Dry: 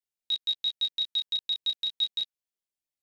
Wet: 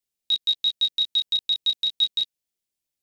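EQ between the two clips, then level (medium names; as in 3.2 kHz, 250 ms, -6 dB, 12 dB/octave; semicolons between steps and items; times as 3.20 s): peaking EQ 1.2 kHz -8.5 dB 1.7 oct; +7.5 dB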